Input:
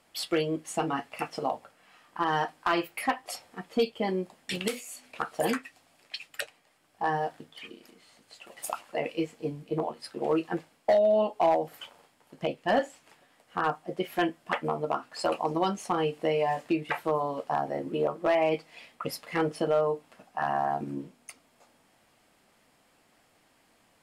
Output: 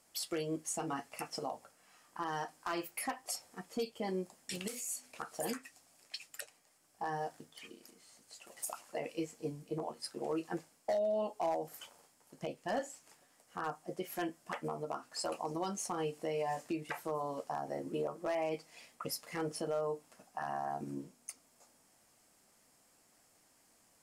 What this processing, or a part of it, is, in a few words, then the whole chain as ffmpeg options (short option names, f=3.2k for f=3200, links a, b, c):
over-bright horn tweeter: -af "highshelf=f=4.6k:t=q:w=1.5:g=8.5,alimiter=limit=-21dB:level=0:latency=1:release=112,volume=-6.5dB"